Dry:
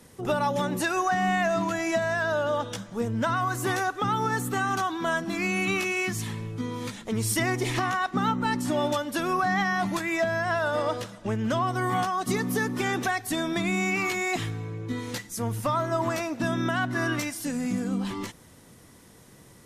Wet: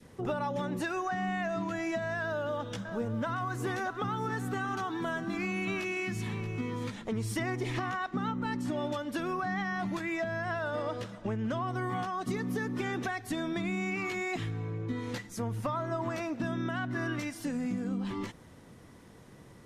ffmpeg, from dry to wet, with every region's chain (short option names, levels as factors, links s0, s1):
-filter_complex "[0:a]asettb=1/sr,asplit=3[s0][s1][s2];[s0]atrim=end=2.224[s3];[s1]atrim=start=2.22:end=6.9,asetpts=PTS-STARTPTS,afade=t=in:d=0.004:c=qsin,afade=t=out:st=4.676:d=0.004:c=qsin,acrusher=bits=8:mode=log:mix=0:aa=0.000001,aecho=1:1:630:0.211,atrim=end_sample=206388[s4];[s2]atrim=start=6.896[s5];[s3][s4]acrossfade=d=0.004:c1=hsin:c2=qsin[s6];[s6][s5]acrossfade=d=0.004:c1=qsin:c2=hsin,lowpass=f=2400:p=1,adynamicequalizer=threshold=0.0112:dfrequency=860:dqfactor=0.93:tfrequency=860:tqfactor=0.93:attack=5:release=100:ratio=0.375:range=2:mode=cutabove:tftype=bell,acompressor=threshold=0.0251:ratio=2.5"